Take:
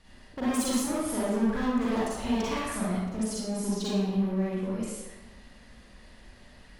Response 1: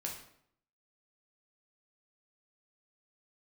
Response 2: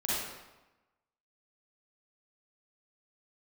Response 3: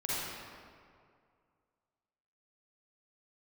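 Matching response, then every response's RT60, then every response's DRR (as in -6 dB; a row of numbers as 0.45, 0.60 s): 2; 0.70, 1.1, 2.2 s; -1.0, -8.5, -9.0 dB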